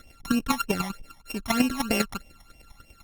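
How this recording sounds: a buzz of ramps at a fixed pitch in blocks of 32 samples; chopped level 10 Hz, depth 60%, duty 15%; phasing stages 12, 3.2 Hz, lowest notch 450–1400 Hz; Opus

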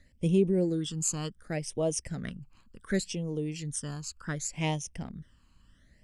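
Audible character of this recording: phasing stages 12, 0.68 Hz, lowest notch 600–1500 Hz

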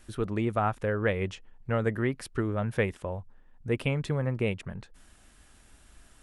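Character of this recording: noise floor -58 dBFS; spectral tilt -6.5 dB/oct

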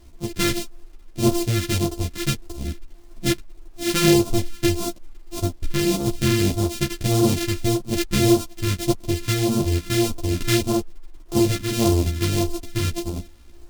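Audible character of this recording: a buzz of ramps at a fixed pitch in blocks of 128 samples; phasing stages 2, 1.7 Hz, lowest notch 750–1800 Hz; a quantiser's noise floor 10-bit, dither none; a shimmering, thickened sound

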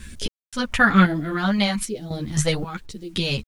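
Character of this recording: phasing stages 2, 1.1 Hz, lowest notch 350–1100 Hz; random-step tremolo 3.8 Hz, depth 100%; a quantiser's noise floor 12-bit, dither none; a shimmering, thickened sound

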